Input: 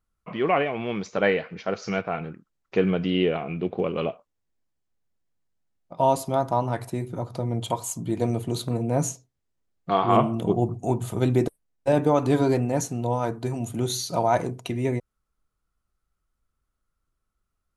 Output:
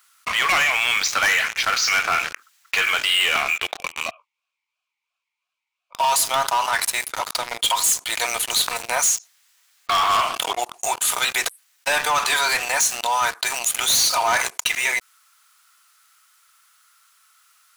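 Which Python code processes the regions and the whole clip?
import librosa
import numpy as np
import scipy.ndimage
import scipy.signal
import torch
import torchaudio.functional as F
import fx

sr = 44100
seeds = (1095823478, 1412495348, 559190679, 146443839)

y = fx.chain(x, sr, fx.low_shelf(hz=450.0, db=-12.0),
    fx.vowel_sweep(vowels='a-u', hz=2.9), at=(3.77, 5.95))
y = scipy.signal.sosfilt(scipy.signal.bessel(4, 1800.0, 'highpass', norm='mag', fs=sr, output='sos'), y)
y = fx.leveller(y, sr, passes=5)
y = fx.env_flatten(y, sr, amount_pct=50)
y = y * librosa.db_to_amplitude(2.0)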